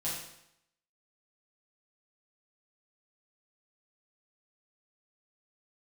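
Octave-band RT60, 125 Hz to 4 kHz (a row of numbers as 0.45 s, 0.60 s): 0.75 s, 0.75 s, 0.75 s, 0.80 s, 0.75 s, 0.75 s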